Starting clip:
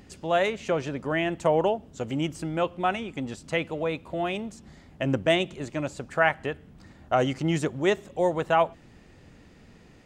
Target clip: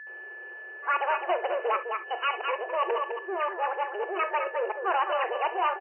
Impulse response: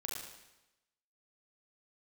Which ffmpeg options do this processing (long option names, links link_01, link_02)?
-filter_complex "[0:a]areverse,aecho=1:1:359:0.335,aeval=exprs='val(0)+0.00708*sin(2*PI*1000*n/s)':channel_layout=same,asoftclip=type=tanh:threshold=-24dB,asplit=2[link_01][link_02];[1:a]atrim=start_sample=2205,atrim=end_sample=6174[link_03];[link_02][link_03]afir=irnorm=-1:irlink=0,volume=-5dB[link_04];[link_01][link_04]amix=inputs=2:normalize=0,asetrate=76440,aresample=44100,afftfilt=real='re*between(b*sr/4096,340,3000)':imag='im*between(b*sr/4096,340,3000)':win_size=4096:overlap=0.75"